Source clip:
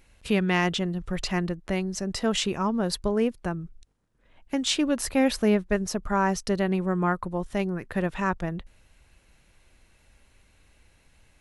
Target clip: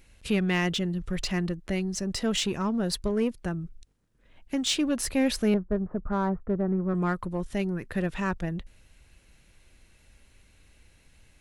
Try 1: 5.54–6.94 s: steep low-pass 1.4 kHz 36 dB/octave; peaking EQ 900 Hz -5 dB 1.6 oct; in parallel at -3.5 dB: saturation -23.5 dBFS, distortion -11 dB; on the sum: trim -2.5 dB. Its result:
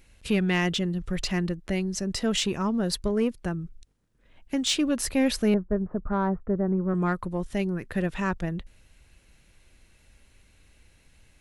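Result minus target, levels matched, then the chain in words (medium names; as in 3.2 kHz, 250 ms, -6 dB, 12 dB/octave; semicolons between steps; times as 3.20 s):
saturation: distortion -5 dB
5.54–6.94 s: steep low-pass 1.4 kHz 36 dB/octave; peaking EQ 900 Hz -5 dB 1.6 oct; in parallel at -3.5 dB: saturation -31.5 dBFS, distortion -6 dB; on the sum: trim -2.5 dB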